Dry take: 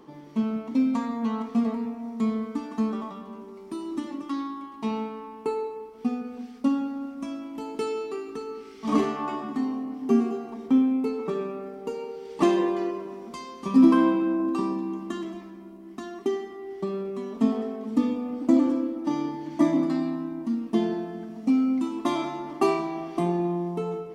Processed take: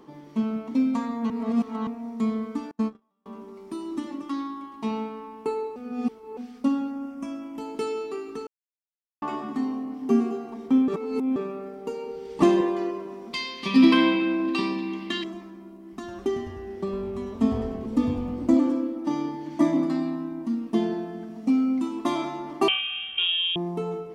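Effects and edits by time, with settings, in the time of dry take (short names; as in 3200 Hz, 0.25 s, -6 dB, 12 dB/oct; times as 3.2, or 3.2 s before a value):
1.3–1.87 reverse
2.71–3.26 gate -27 dBFS, range -38 dB
5.76–6.37 reverse
6.9–7.58 bell 4000 Hz -13.5 dB 0.27 oct
8.47–9.22 mute
10.88–11.36 reverse
12.06–12.61 low shelf 180 Hz +10.5 dB
13.33–15.24 band shelf 3000 Hz +16 dB
15.82–18.56 frequency-shifting echo 0.102 s, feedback 64%, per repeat -150 Hz, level -12 dB
22.68–23.56 inverted band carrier 3500 Hz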